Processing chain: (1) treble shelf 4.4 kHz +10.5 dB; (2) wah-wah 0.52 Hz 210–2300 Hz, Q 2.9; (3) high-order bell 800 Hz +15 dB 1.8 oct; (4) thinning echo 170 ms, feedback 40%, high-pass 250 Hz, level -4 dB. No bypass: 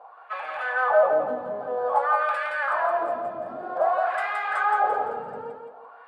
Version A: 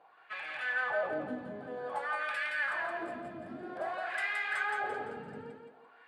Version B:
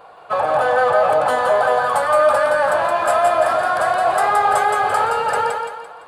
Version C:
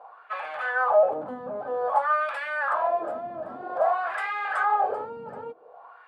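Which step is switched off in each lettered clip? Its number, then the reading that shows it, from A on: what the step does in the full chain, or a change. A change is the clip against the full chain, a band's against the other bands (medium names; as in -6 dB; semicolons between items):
3, 1 kHz band -12.0 dB; 2, 4 kHz band +7.5 dB; 4, loudness change -1.5 LU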